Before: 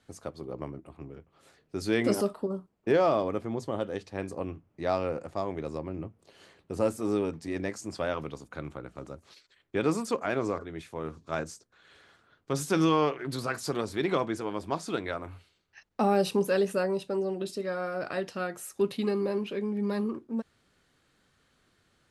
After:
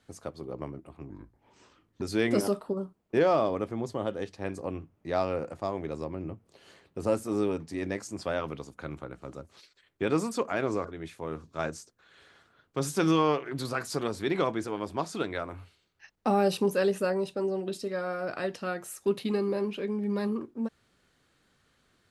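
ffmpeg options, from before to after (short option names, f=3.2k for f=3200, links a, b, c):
-filter_complex "[0:a]asplit=3[a][b][c];[a]atrim=end=1.104[d];[b]atrim=start=1.1:end=1.75,asetpts=PTS-STARTPTS,asetrate=31311,aresample=44100,atrim=end_sample=40373,asetpts=PTS-STARTPTS[e];[c]atrim=start=1.746[f];[d][e]acrossfade=d=0.004:c1=hsin:c2=hsin[g];[g][f]acrossfade=d=0.004:c1=hsin:c2=hsin"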